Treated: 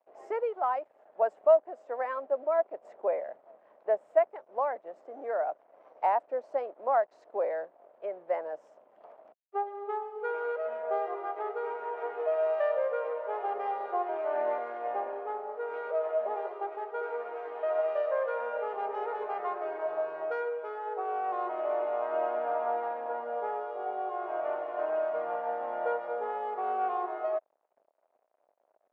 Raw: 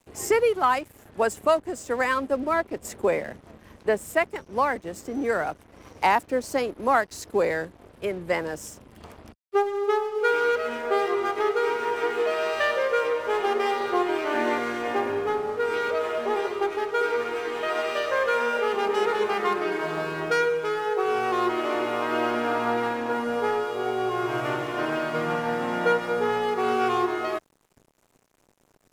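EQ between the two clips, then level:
four-pole ladder band-pass 700 Hz, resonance 65%
+2.5 dB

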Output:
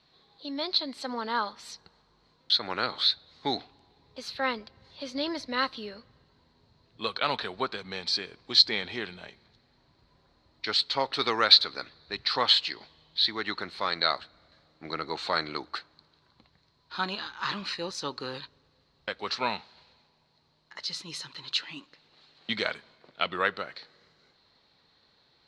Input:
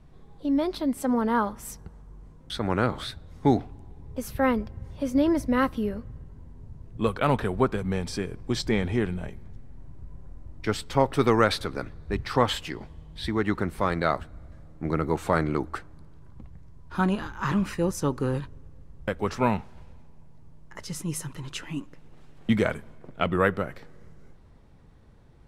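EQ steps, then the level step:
high-pass filter 1,200 Hz 6 dB per octave
low-pass with resonance 4,200 Hz, resonance Q 9.4
0.0 dB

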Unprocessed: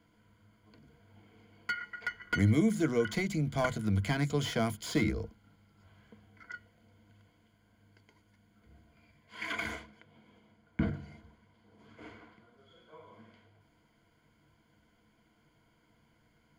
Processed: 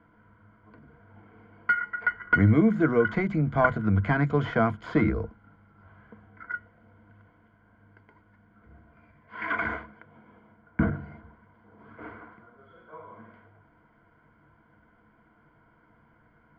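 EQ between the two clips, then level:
low-pass with resonance 1,400 Hz, resonance Q 2
+6.0 dB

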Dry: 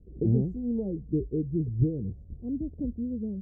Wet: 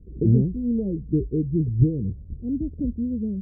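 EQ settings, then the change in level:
Gaussian smoothing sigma 15 samples
+7.0 dB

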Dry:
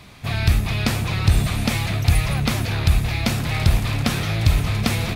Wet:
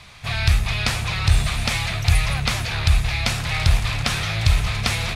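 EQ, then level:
low-pass filter 9,400 Hz 12 dB per octave
parametric band 270 Hz −14.5 dB 1.9 octaves
mains-hum notches 50/100 Hz
+3.5 dB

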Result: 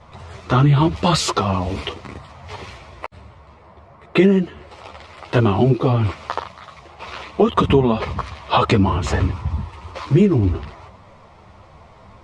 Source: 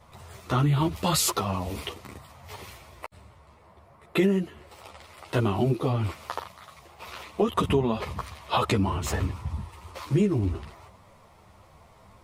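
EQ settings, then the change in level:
low-pass filter 9,300 Hz 12 dB per octave
high-frequency loss of the air 88 metres
+9.0 dB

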